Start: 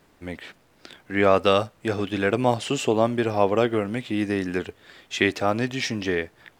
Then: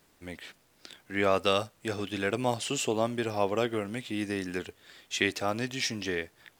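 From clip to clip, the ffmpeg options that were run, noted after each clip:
ffmpeg -i in.wav -af "highshelf=frequency=3600:gain=11,volume=-8dB" out.wav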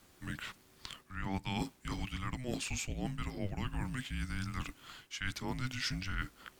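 ffmpeg -i in.wav -af "areverse,acompressor=threshold=-35dB:ratio=10,areverse,afreqshift=-380,volume=2dB" out.wav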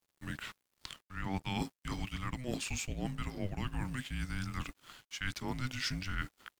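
ffmpeg -i in.wav -af "aeval=exprs='sgn(val(0))*max(abs(val(0))-0.00141,0)':channel_layout=same,volume=1dB" out.wav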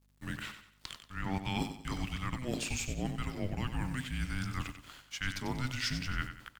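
ffmpeg -i in.wav -filter_complex "[0:a]aeval=exprs='val(0)+0.000355*(sin(2*PI*50*n/s)+sin(2*PI*2*50*n/s)/2+sin(2*PI*3*50*n/s)/3+sin(2*PI*4*50*n/s)/4+sin(2*PI*5*50*n/s)/5)':channel_layout=same,asplit=2[link_01][link_02];[link_02]aecho=0:1:93|186|279|372:0.335|0.124|0.0459|0.017[link_03];[link_01][link_03]amix=inputs=2:normalize=0,volume=1.5dB" out.wav

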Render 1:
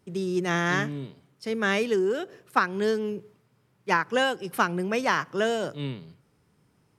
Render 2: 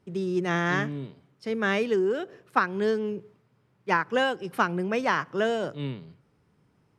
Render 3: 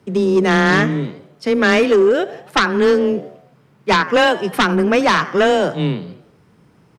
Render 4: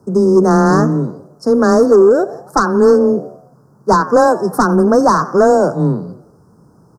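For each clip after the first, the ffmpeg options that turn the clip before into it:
ffmpeg -i in.wav -af "lowpass=frequency=3200:poles=1" out.wav
ffmpeg -i in.wav -filter_complex "[0:a]asplit=5[link_01][link_02][link_03][link_04][link_05];[link_02]adelay=89,afreqshift=74,volume=-19dB[link_06];[link_03]adelay=178,afreqshift=148,volume=-25.4dB[link_07];[link_04]adelay=267,afreqshift=222,volume=-31.8dB[link_08];[link_05]adelay=356,afreqshift=296,volume=-38.1dB[link_09];[link_01][link_06][link_07][link_08][link_09]amix=inputs=5:normalize=0,afreqshift=15,aeval=exprs='0.398*sin(PI/2*3.16*val(0)/0.398)':channel_layout=same" out.wav
ffmpeg -i in.wav -af "asuperstop=centerf=2700:order=8:qfactor=0.7,volume=4.5dB" out.wav

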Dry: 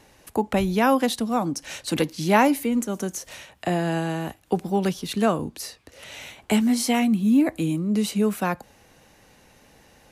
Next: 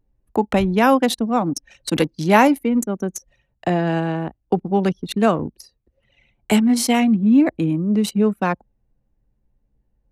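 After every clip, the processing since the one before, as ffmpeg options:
ffmpeg -i in.wav -af "anlmdn=63.1,volume=4.5dB" out.wav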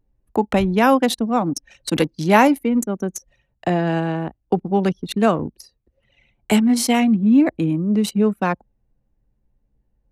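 ffmpeg -i in.wav -af anull out.wav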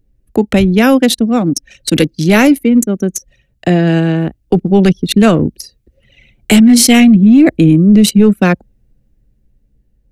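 ffmpeg -i in.wav -af "dynaudnorm=framelen=520:gausssize=7:maxgain=11.5dB,equalizer=frequency=940:width_type=o:width=0.99:gain=-14.5,apsyclip=11.5dB,volume=-1.5dB" out.wav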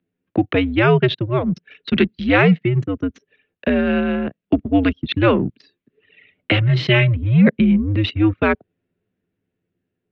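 ffmpeg -i in.wav -af "highpass=frequency=290:width_type=q:width=0.5412,highpass=frequency=290:width_type=q:width=1.307,lowpass=frequency=3500:width_type=q:width=0.5176,lowpass=frequency=3500:width_type=q:width=0.7071,lowpass=frequency=3500:width_type=q:width=1.932,afreqshift=-110,volume=-2.5dB" out.wav

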